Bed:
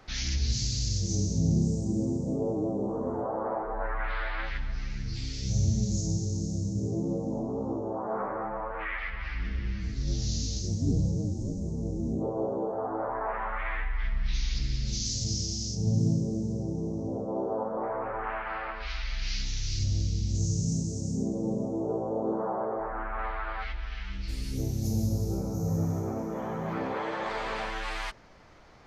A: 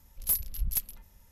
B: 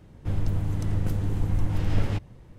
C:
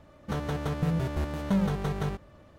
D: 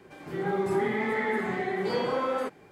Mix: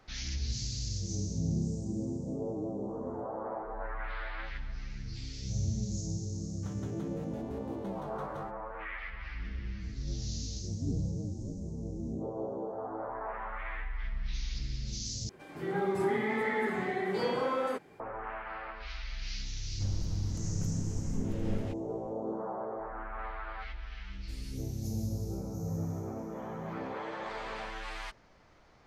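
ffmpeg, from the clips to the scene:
-filter_complex "[0:a]volume=-6.5dB,asplit=2[a][b];[a]atrim=end=15.294[c];[4:a]atrim=end=2.71,asetpts=PTS-STARTPTS,volume=-3dB[d];[b]atrim=start=17.996[e];[3:a]atrim=end=2.58,asetpts=PTS-STARTPTS,volume=-16.5dB,afade=t=in:d=0.004:c=hsin,afade=t=out:st=2.576:d=0.004:c=hsin,adelay=279594S[f];[2:a]atrim=end=2.58,asetpts=PTS-STARTPTS,volume=-11.5dB,afade=t=in:d=0.004:c=hsin,afade=t=out:st=2.576:d=0.004:c=hsin,adelay=19550[g];[c][d]acrossfade=d=0.004:c1=hsin:c2=hsin[h];[h][e]acrossfade=d=0.004:c1=hsin:c2=hsin[i];[i][f][g]amix=inputs=3:normalize=0"

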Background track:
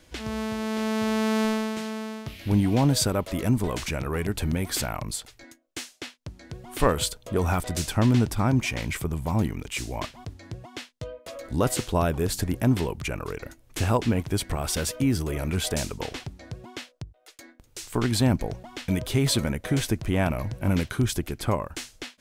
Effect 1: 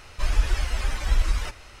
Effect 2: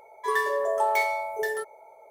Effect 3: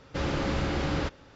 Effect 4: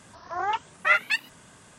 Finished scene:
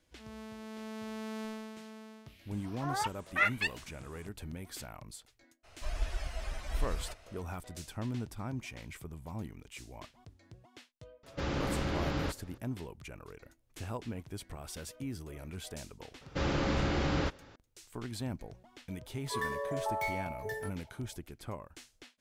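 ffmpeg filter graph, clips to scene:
-filter_complex "[3:a]asplit=2[a][b];[0:a]volume=-16.5dB[c];[1:a]equalizer=f=660:t=o:w=0.25:g=13.5[d];[4:a]atrim=end=1.78,asetpts=PTS-STARTPTS,volume=-7.5dB,afade=t=in:d=0.004:c=hsin,afade=t=out:st=1.776:d=0.004:c=hsin,adelay=2510[e];[d]atrim=end=1.8,asetpts=PTS-STARTPTS,volume=-13dB,afade=t=in:d=0.02,afade=t=out:st=1.78:d=0.02,adelay=5630[f];[a]atrim=end=1.35,asetpts=PTS-STARTPTS,volume=-5dB,afade=t=in:d=0.004:c=hsin,afade=t=out:st=1.346:d=0.004:c=hsin,adelay=11230[g];[b]atrim=end=1.35,asetpts=PTS-STARTPTS,volume=-2dB,afade=t=in:d=0.004:c=hsin,afade=t=out:st=1.346:d=0.004:c=hsin,adelay=16210[h];[2:a]atrim=end=2.1,asetpts=PTS-STARTPTS,volume=-10.5dB,afade=t=in:d=0.004:c=hsin,afade=t=out:st=2.096:d=0.004:c=hsin,adelay=19060[i];[c][e][f][g][h][i]amix=inputs=6:normalize=0"

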